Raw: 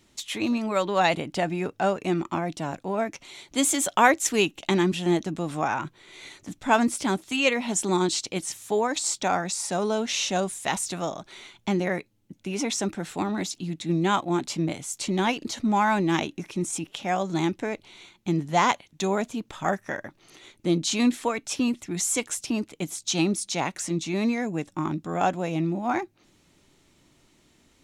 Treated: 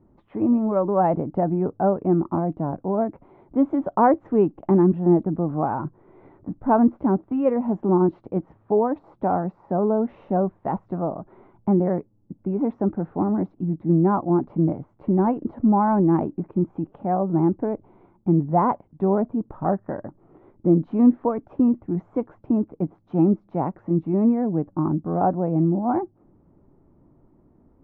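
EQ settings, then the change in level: LPF 1100 Hz 24 dB/oct; tilt shelf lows +4 dB, about 630 Hz; +3.5 dB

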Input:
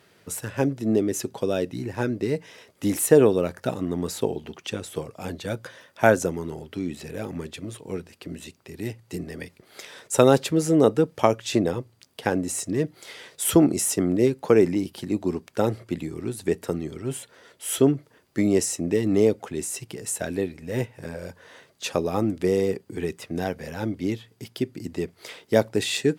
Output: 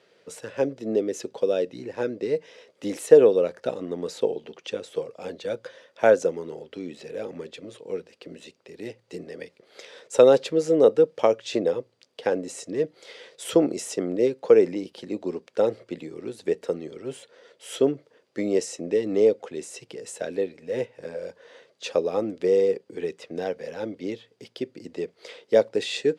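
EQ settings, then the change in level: BPF 170–4700 Hz; bell 500 Hz +13 dB 0.62 oct; high shelf 2600 Hz +9 dB; -7.5 dB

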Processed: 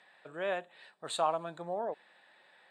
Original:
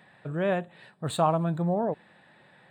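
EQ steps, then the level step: BPF 460–6200 Hz; high shelf 4200 Hz +11.5 dB; -5.5 dB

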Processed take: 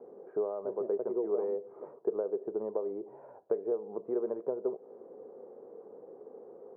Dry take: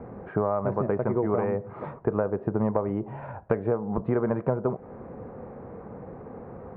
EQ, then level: ladder band-pass 460 Hz, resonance 60%; 0.0 dB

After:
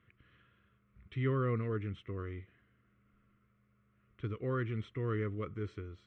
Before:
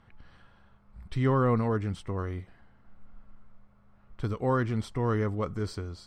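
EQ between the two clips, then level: speaker cabinet 120–4600 Hz, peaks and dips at 170 Hz -9 dB, 240 Hz -8 dB, 580 Hz -6 dB, 880 Hz -7 dB, 1600 Hz -6 dB; fixed phaser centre 2000 Hz, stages 4; -1.5 dB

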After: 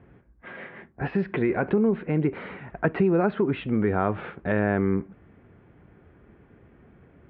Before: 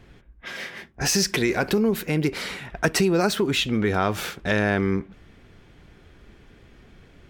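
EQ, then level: Gaussian blur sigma 3.9 samples; HPF 79 Hz; air absorption 210 m; 0.0 dB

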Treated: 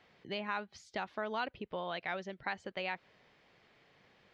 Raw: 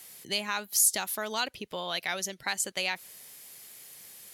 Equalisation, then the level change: air absorption 200 m; tape spacing loss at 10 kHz 28 dB; bell 210 Hz -2.5 dB 2.8 oct; +1.0 dB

